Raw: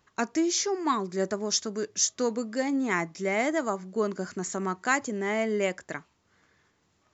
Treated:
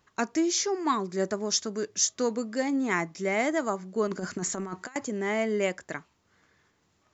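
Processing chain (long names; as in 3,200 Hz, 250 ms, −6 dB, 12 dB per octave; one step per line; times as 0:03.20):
0:04.07–0:04.96: compressor whose output falls as the input rises −33 dBFS, ratio −0.5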